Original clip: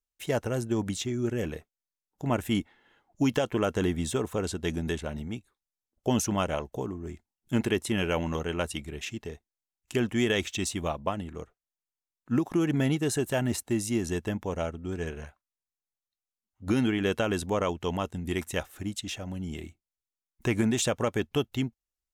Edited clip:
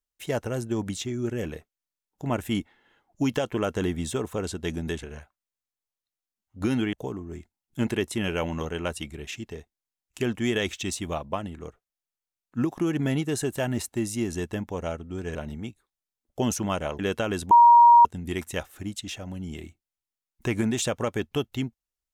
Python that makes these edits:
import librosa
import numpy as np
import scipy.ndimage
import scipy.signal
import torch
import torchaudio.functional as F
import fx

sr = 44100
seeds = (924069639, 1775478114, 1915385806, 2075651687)

y = fx.edit(x, sr, fx.swap(start_s=5.03, length_s=1.64, other_s=15.09, other_length_s=1.9),
    fx.bleep(start_s=17.51, length_s=0.54, hz=947.0, db=-10.0), tone=tone)